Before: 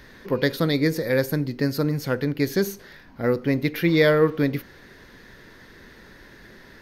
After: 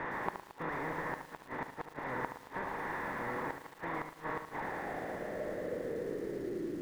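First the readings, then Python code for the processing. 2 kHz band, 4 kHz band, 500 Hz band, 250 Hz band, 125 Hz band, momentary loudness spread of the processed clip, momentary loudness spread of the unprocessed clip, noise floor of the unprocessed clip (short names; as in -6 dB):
-10.5 dB, -23.5 dB, -16.0 dB, -18.5 dB, -22.5 dB, 5 LU, 9 LU, -49 dBFS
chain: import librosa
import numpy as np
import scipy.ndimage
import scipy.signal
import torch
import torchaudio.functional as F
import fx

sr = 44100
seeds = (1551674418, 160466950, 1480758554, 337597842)

p1 = fx.bin_compress(x, sr, power=0.2)
p2 = F.preemphasis(torch.from_numpy(p1), 0.97).numpy()
p3 = p2 + 0.31 * np.pad(p2, (int(1.1 * sr / 1000.0), 0))[:len(p2)]
p4 = fx.backlash(p3, sr, play_db=-40.5)
p5 = p3 + (p4 * librosa.db_to_amplitude(-8.0))
p6 = fx.fixed_phaser(p5, sr, hz=1900.0, stages=4)
p7 = fx.quant_companded(p6, sr, bits=2)
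p8 = fx.gate_flip(p7, sr, shuts_db=-19.0, range_db=-37)
p9 = fx.filter_sweep_lowpass(p8, sr, from_hz=930.0, to_hz=340.0, start_s=4.49, end_s=6.76, q=4.8)
p10 = p9 + fx.echo_single(p9, sr, ms=73, db=-9.0, dry=0)
p11 = fx.echo_crushed(p10, sr, ms=112, feedback_pct=80, bits=7, wet_db=-14.0)
y = p11 * librosa.db_to_amplitude(-5.5)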